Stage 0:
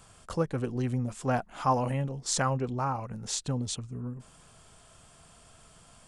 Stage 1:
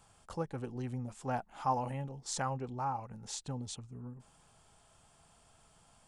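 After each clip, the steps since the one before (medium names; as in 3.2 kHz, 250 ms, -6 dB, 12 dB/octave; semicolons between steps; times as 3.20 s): peaking EQ 840 Hz +9.5 dB 0.22 oct; trim -9 dB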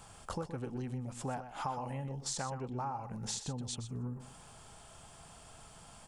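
compression 6:1, threshold -46 dBFS, peak gain reduction 18.5 dB; delay 123 ms -11 dB; trim +9.5 dB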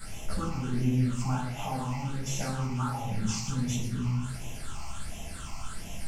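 one-bit delta coder 64 kbps, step -43.5 dBFS; phase shifter stages 8, 1.4 Hz, lowest notch 470–1400 Hz; simulated room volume 480 m³, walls furnished, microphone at 7 m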